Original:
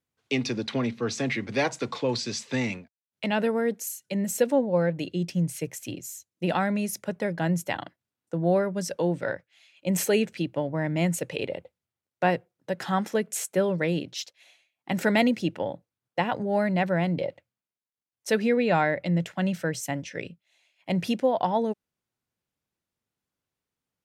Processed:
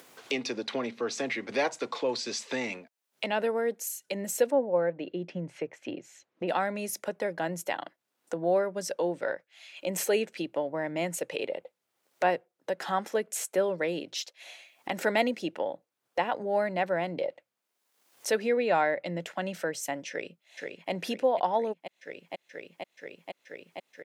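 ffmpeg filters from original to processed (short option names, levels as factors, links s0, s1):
-filter_complex "[0:a]asplit=3[s0][s1][s2];[s0]afade=t=out:st=4.5:d=0.02[s3];[s1]lowpass=2100,afade=t=in:st=4.5:d=0.02,afade=t=out:st=6.47:d=0.02[s4];[s2]afade=t=in:st=6.47:d=0.02[s5];[s3][s4][s5]amix=inputs=3:normalize=0,asplit=2[s6][s7];[s7]afade=t=in:st=20.09:d=0.01,afade=t=out:st=20.91:d=0.01,aecho=0:1:480|960|1440|1920|2400|2880|3360|3840|4320|4800|5280|5760:0.334965|0.267972|0.214378|0.171502|0.137202|0.109761|0.0878092|0.0702473|0.0561979|0.0449583|0.0359666|0.0287733[s8];[s6][s8]amix=inputs=2:normalize=0,highpass=480,tiltshelf=f=660:g=4,acompressor=mode=upward:threshold=0.0398:ratio=2.5"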